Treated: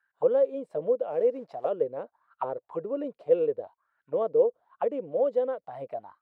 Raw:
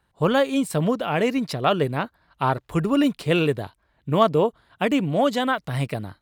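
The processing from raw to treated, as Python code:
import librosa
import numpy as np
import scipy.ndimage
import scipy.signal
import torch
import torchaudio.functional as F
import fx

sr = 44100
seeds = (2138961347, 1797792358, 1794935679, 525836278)

y = fx.quant_float(x, sr, bits=2, at=(1.1, 1.69))
y = fx.auto_wah(y, sr, base_hz=500.0, top_hz=1600.0, q=8.9, full_db=-20.0, direction='down')
y = y * librosa.db_to_amplitude(4.0)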